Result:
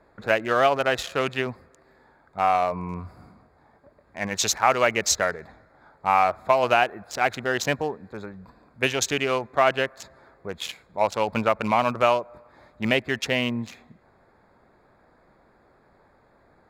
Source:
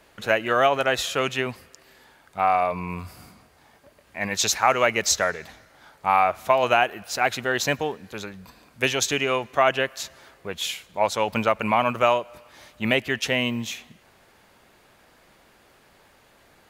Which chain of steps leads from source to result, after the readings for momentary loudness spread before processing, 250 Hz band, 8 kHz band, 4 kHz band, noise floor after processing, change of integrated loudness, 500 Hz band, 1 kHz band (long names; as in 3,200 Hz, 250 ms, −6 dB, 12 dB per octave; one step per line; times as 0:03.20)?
17 LU, 0.0 dB, −1.5 dB, −2.5 dB, −60 dBFS, −0.5 dB, 0.0 dB, −0.5 dB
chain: adaptive Wiener filter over 15 samples